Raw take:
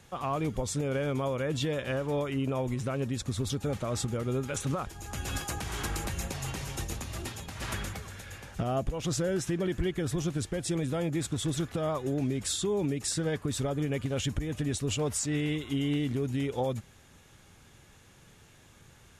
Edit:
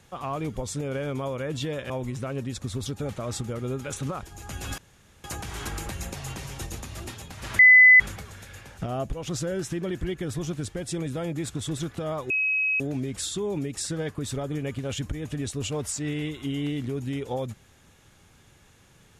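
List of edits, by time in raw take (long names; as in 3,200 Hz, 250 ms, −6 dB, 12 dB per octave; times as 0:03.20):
0:01.90–0:02.54: remove
0:05.42: splice in room tone 0.46 s
0:07.77: insert tone 2,010 Hz −9.5 dBFS 0.41 s
0:12.07: insert tone 2,550 Hz −21.5 dBFS 0.50 s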